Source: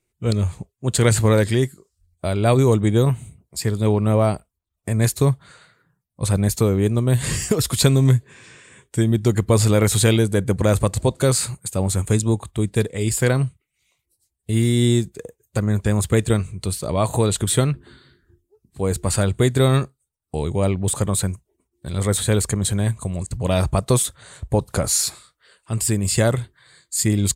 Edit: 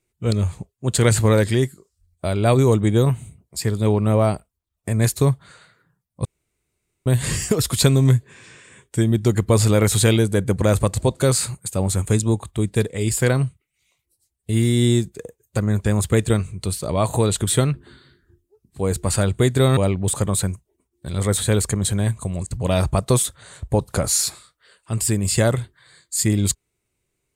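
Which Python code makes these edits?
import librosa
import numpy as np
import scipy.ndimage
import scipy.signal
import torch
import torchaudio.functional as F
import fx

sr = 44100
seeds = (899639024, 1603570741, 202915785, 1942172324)

y = fx.edit(x, sr, fx.room_tone_fill(start_s=6.25, length_s=0.81),
    fx.cut(start_s=19.77, length_s=0.8), tone=tone)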